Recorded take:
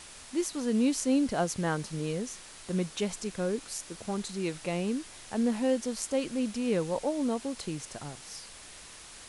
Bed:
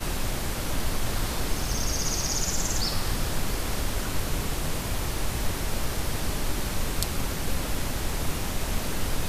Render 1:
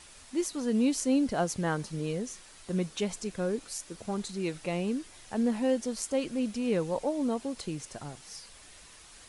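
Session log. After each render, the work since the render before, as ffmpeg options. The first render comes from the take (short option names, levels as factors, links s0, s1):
-af "afftdn=nr=6:nf=-49"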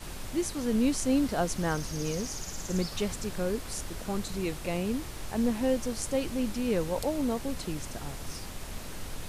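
-filter_complex "[1:a]volume=0.266[s0];[0:a][s0]amix=inputs=2:normalize=0"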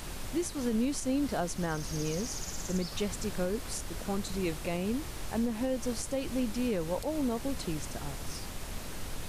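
-af "alimiter=limit=0.0794:level=0:latency=1:release=176,acompressor=mode=upward:threshold=0.00631:ratio=2.5"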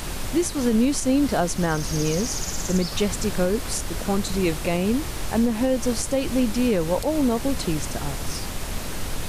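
-af "volume=3.16"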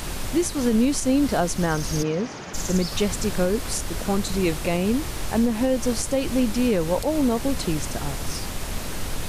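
-filter_complex "[0:a]asplit=3[s0][s1][s2];[s0]afade=t=out:st=2.02:d=0.02[s3];[s1]highpass=160,lowpass=2600,afade=t=in:st=2.02:d=0.02,afade=t=out:st=2.53:d=0.02[s4];[s2]afade=t=in:st=2.53:d=0.02[s5];[s3][s4][s5]amix=inputs=3:normalize=0"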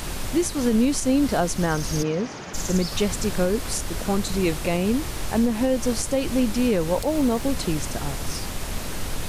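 -filter_complex "[0:a]asettb=1/sr,asplit=3[s0][s1][s2];[s0]atrim=end=6.964[s3];[s1]atrim=start=6.96:end=7.49,asetpts=PTS-STARTPTS,afade=t=in:d=0.004:c=qsin,afade=t=out:st=0.526:d=0.004:c=qsin,acrusher=bits=7:mix=0:aa=0.5[s4];[s2]atrim=start=7.486[s5];[s3][s4]acrossfade=d=0.004:c1=hsin:c2=qsin[s6];[s6][s5]acrossfade=d=0.004:c1=qsin:c2=hsin"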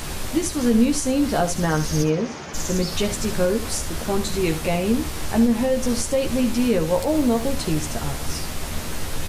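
-filter_complex "[0:a]asplit=2[s0][s1];[s1]adelay=13,volume=0.562[s2];[s0][s2]amix=inputs=2:normalize=0,aecho=1:1:71:0.251"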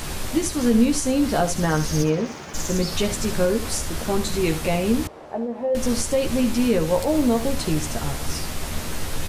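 -filter_complex "[0:a]asettb=1/sr,asplit=3[s0][s1][s2];[s0]atrim=end=1.914[s3];[s1]atrim=start=1.91:end=2.8,asetpts=PTS-STARTPTS,afade=t=in:d=0.004:c=qsin,afade=t=out:st=0.886:d=0.004:c=qsin,aeval=exprs='sgn(val(0))*max(abs(val(0))-0.00501,0)':c=same[s4];[s2]atrim=start=2.796[s5];[s3][s4]acrossfade=d=0.004:c1=hsin:c2=qsin[s6];[s6][s5]acrossfade=d=0.004:c1=qsin:c2=hsin,asettb=1/sr,asplit=3[s7][s8][s9];[s7]atrim=end=5.074[s10];[s8]atrim=start=5.07:end=5.75,asetpts=PTS-STARTPTS,afade=t=in:d=0.004:c=qsin,afade=t=out:st=0.676:d=0.004:c=qsin,bandpass=f=590:t=q:w=1.9[s11];[s9]atrim=start=5.746[s12];[s10][s11]acrossfade=d=0.004:c1=hsin:c2=qsin[s13];[s13][s12]acrossfade=d=0.004:c1=qsin:c2=hsin"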